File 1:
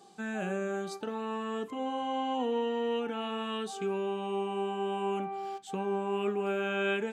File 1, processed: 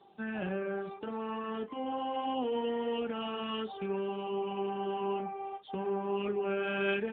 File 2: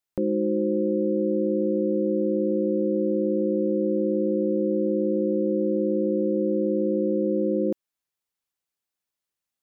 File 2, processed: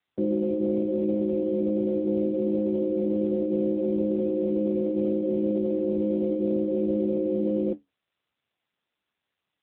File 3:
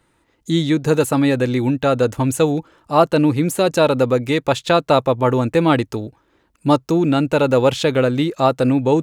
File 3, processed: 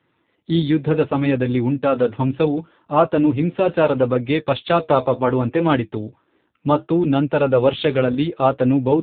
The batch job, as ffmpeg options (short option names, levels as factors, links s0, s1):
-af "flanger=delay=6.9:depth=6.7:regen=-60:speed=0.69:shape=triangular,aemphasis=mode=production:type=50kf,volume=1.41" -ar 8000 -c:a libopencore_amrnb -b:a 7400